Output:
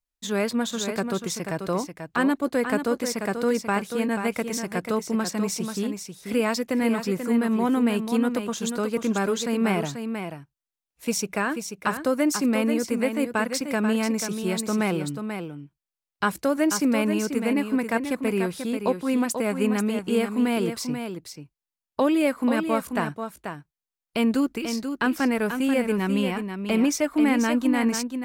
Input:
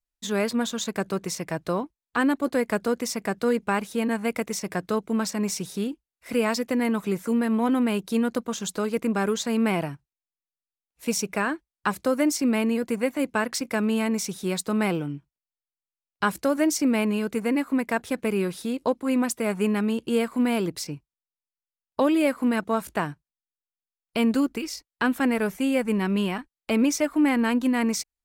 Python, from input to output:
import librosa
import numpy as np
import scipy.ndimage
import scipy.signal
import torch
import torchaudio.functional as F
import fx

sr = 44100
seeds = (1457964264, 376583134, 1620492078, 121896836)

y = x + 10.0 ** (-7.5 / 20.0) * np.pad(x, (int(487 * sr / 1000.0), 0))[:len(x)]